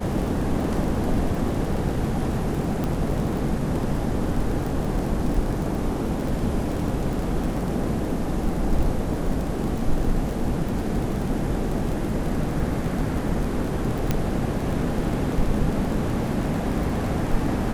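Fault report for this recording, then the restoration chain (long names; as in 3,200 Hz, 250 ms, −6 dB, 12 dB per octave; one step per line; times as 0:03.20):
surface crackle 23 per second −27 dBFS
0:02.84: click
0:14.11: click −8 dBFS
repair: click removal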